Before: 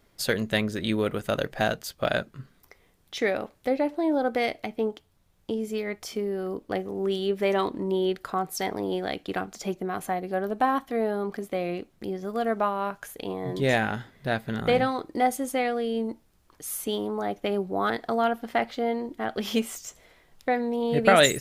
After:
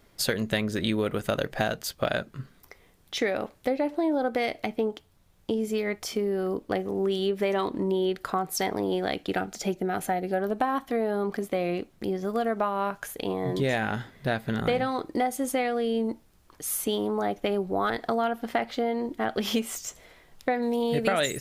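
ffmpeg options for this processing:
-filter_complex "[0:a]asettb=1/sr,asplit=3[a][b][c];[a]atrim=end=9.294[d];[b]atrim=start=9.29:end=10.4,asetpts=PTS-STARTPTS,afade=t=in:d=0.004:c=qsin,afade=t=out:st=1.106:d=0.004:c=qsin,asuperstop=centerf=1100:order=4:qfactor=5.7[e];[c]atrim=start=10.396[f];[d][e]acrossfade=d=0.004:c1=hsin:c2=qsin[g];[g][f]acrossfade=d=0.004:c1=qsin:c2=hsin,asettb=1/sr,asplit=3[h][i][j];[h]atrim=end=17.304[k];[i]atrim=start=17.3:end=17.98,asetpts=PTS-STARTPTS,afade=t=in:d=0.004:c=qsin,afade=t=out:st=0.676:d=0.004:c=qsin,asubboost=boost=12:cutoff=84[l];[j]atrim=start=17.976[m];[k][l]acrossfade=d=0.004:c1=hsin:c2=qsin[n];[n][m]acrossfade=d=0.004:c1=qsin:c2=hsin,asettb=1/sr,asplit=3[o][p][q];[o]atrim=end=20.624[r];[p]atrim=start=20.62:end=21.08,asetpts=PTS-STARTPTS,afade=t=in:d=0.004:c=qsin,afade=t=out:st=0.456:d=0.004:c=qsin,highshelf=f=3.7k:g=8.5[s];[q]atrim=start=21.076[t];[r][s]acrossfade=d=0.004:c1=hsin:c2=qsin[u];[u][t]acrossfade=d=0.004:c1=qsin:c2=hsin,acompressor=threshold=-26dB:ratio=5,volume=3.5dB"

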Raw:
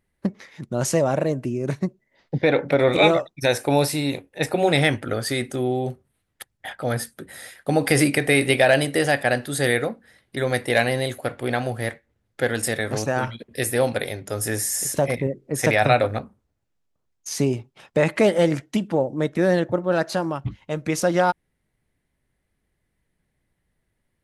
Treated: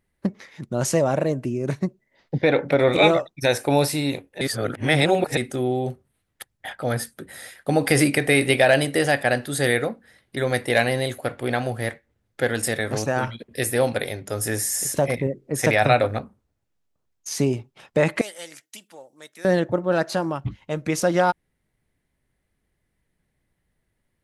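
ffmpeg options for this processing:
-filter_complex "[0:a]asettb=1/sr,asplit=3[a][b][c];[a]atrim=end=18.214[d];[b]atrim=start=18.21:end=19.45,asetpts=PTS-STARTPTS,afade=t=in:d=0.004:c=qsin,afade=t=out:st=1.236:d=0.004:c=qsin,aderivative[e];[c]atrim=start=19.446[f];[d][e]acrossfade=d=0.004:c1=hsin:c2=qsin[g];[g][f]acrossfade=d=0.004:c1=qsin:c2=hsin,asplit=3[h][i][j];[h]atrim=end=4.412[k];[i]atrim=start=4.408:end=5.372,asetpts=PTS-STARTPTS,areverse[l];[j]atrim=start=5.368[m];[k][l]acrossfade=d=0.004:c1=hsin:c2=hsin[n];[n][m]acrossfade=d=0.004:c1=hsin:c2=hsin"

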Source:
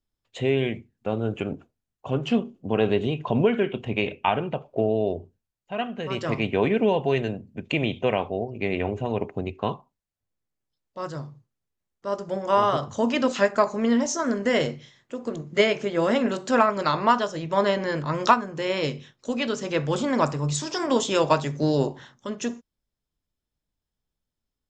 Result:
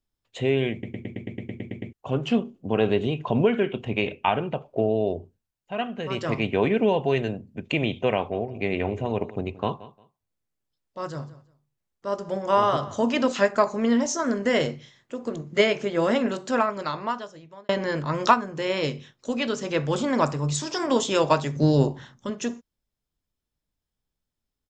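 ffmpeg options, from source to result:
-filter_complex "[0:a]asplit=3[a][b][c];[a]afade=t=out:st=8.31:d=0.02[d];[b]aecho=1:1:176|352:0.126|0.0264,afade=t=in:st=8.31:d=0.02,afade=t=out:st=13.28:d=0.02[e];[c]afade=t=in:st=13.28:d=0.02[f];[d][e][f]amix=inputs=3:normalize=0,asettb=1/sr,asplit=3[g][h][i];[g]atrim=end=21.564[j];[h]atrim=start=21.56:end=22.3,asetpts=PTS-STARTPTS,afade=t=in:d=0.004:c=qsin,afade=t=out:st=0.736:d=0.004:c=qsin,bass=f=250:g=7,treble=f=4k:g=0[k];[i]atrim=start=22.296[l];[j][k]acrossfade=d=0.004:c1=hsin:c2=qsin[m];[m][l]acrossfade=d=0.004:c1=qsin:c2=hsin,asplit=13[n][o][p][q][r][s][t][u][v][w][x][y][z];[n]atrim=end=0.832[aa];[o]atrim=start=0.718:end=0.832[ab];[p]atrim=start=0.718:end=0.832[ac];[q]atrim=start=0.718:end=0.832[ad];[r]atrim=start=0.718:end=0.832[ae];[s]atrim=start=0.718:end=0.832[af];[t]atrim=start=0.718:end=0.832[ag];[u]atrim=start=0.718:end=0.832[ah];[v]atrim=start=0.718:end=0.832[ai];[w]atrim=start=0.718:end=0.832[aj];[x]atrim=start=0.718:end=0.832[ak];[y]atrim=start=1.928:end=17.69,asetpts=PTS-STARTPTS,afade=t=out:st=14.152:d=1.61[al];[z]atrim=start=17.69,asetpts=PTS-STARTPTS,afade=t=in:d=0.004:c=hsin[am];[aa][ab]acrossfade=d=0.004:c1=hsin:c2=hsin[an];[an][ac]acrossfade=d=0.004:c1=hsin:c2=hsin[ao];[ao][ad]acrossfade=d=0.004:c1=hsin:c2=hsin[ap];[ap][ae]acrossfade=d=0.004:c1=hsin:c2=hsin[aq];[aq][af]acrossfade=d=0.004:c1=hsin:c2=hsin[ar];[ar][ag]acrossfade=d=0.004:c1=hsin:c2=hsin[as];[as][ah]acrossfade=d=0.004:c1=hsin:c2=hsin[at];[at][ai]acrossfade=d=0.004:c1=hsin:c2=hsin[au];[au][aj]acrossfade=d=0.004:c1=hsin:c2=hsin[av];[av][ak]acrossfade=d=0.004:c1=hsin:c2=hsin[aw];[al][am]concat=n=2:v=0:a=1[ax];[aw][ax]acrossfade=d=0.004:c1=hsin:c2=hsin"

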